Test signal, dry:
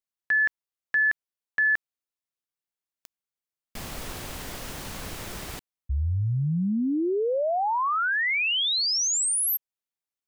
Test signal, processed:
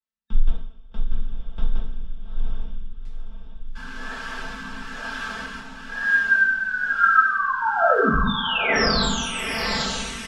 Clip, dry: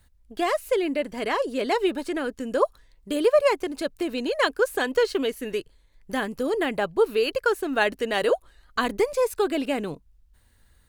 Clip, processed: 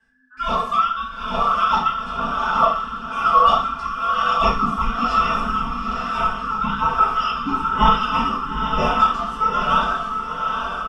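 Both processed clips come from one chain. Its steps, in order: every band turned upside down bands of 2 kHz; treble shelf 4.2 kHz -9 dB; on a send: echo that smears into a reverb 832 ms, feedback 51%, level -3.5 dB; on the sum: two-slope reverb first 0.56 s, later 2.8 s, from -22 dB, DRR -6.5 dB; flange 1.6 Hz, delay 6.8 ms, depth 5.3 ms, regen -63%; rotary cabinet horn 1.1 Hz; low-pass 6 kHz 12 dB/octave; frequency shift -270 Hz; comb 4.5 ms, depth 99%; trim +1 dB

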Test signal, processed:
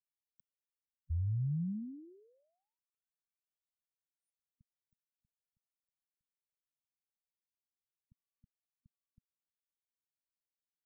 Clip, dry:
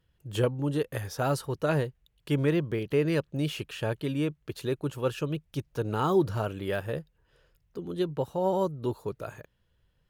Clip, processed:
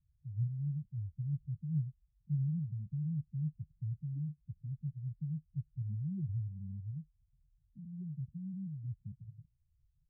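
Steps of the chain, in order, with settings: inverse Chebyshev band-stop 1–8.1 kHz, stop band 80 dB; spectral gate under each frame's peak -10 dB strong; trim -3 dB

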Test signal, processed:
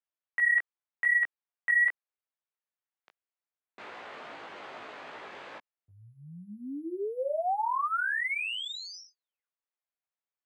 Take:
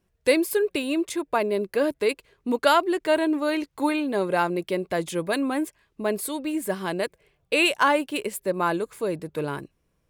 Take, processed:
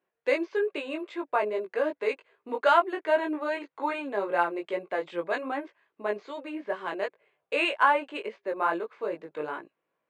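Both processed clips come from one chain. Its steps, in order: careless resampling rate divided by 4×, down filtered, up hold; chorus 2.5 Hz, delay 17.5 ms, depth 2.4 ms; band-pass 490–2400 Hz; trim +2 dB

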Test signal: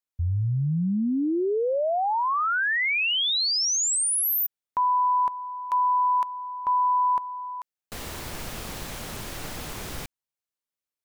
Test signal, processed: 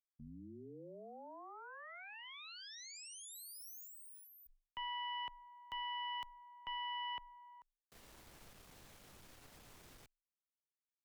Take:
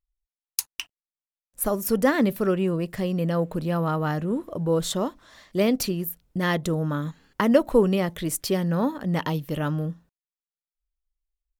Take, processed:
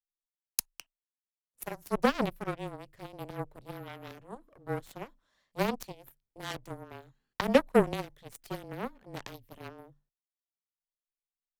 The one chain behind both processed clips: Chebyshev shaper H 2 -18 dB, 3 -23 dB, 4 -21 dB, 7 -18 dB, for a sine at -4.5 dBFS; frequency shift -25 Hz; trim -2.5 dB

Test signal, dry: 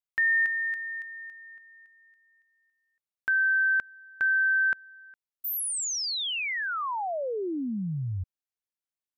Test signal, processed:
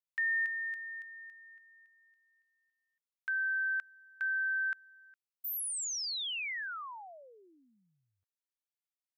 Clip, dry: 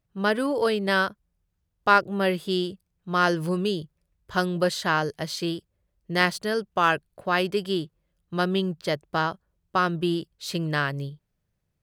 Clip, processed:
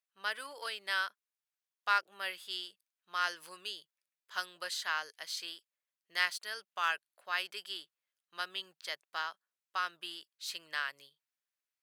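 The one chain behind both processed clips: high-pass 1.5 kHz 12 dB/octave; trim -6 dB

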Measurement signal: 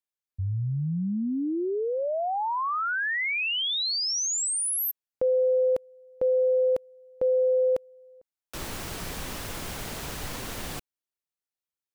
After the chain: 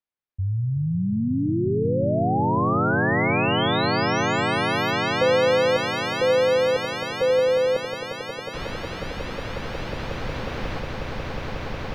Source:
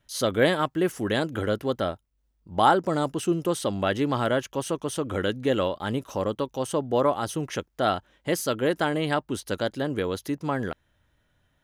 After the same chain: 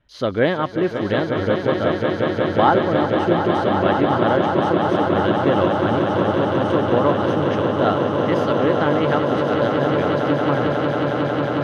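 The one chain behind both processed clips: distance through air 270 m; echo with a slow build-up 181 ms, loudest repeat 8, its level -8 dB; trim +4 dB

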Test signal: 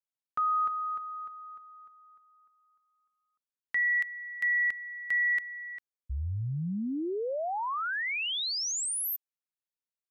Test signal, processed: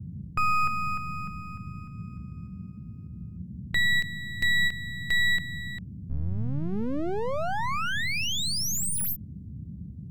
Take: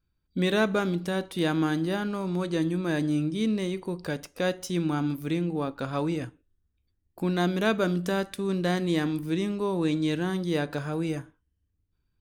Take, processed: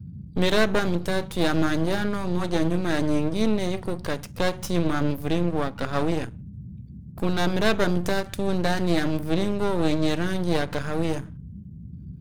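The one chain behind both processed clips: half-wave rectifier; band noise 59–200 Hz -47 dBFS; endings held to a fixed fall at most 280 dB/s; trim +7.5 dB

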